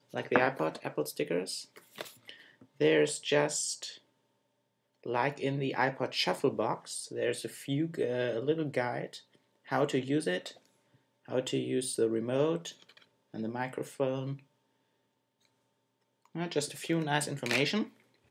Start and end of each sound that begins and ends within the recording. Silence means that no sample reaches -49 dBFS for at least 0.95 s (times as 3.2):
5.04–14.39